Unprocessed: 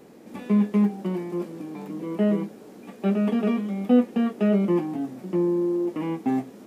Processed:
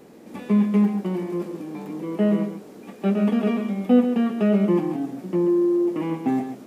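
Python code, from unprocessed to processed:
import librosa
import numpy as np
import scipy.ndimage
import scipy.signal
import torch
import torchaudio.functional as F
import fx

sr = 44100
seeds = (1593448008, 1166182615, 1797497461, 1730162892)

y = x + 10.0 ** (-8.5 / 20.0) * np.pad(x, (int(135 * sr / 1000.0), 0))[:len(x)]
y = F.gain(torch.from_numpy(y), 1.5).numpy()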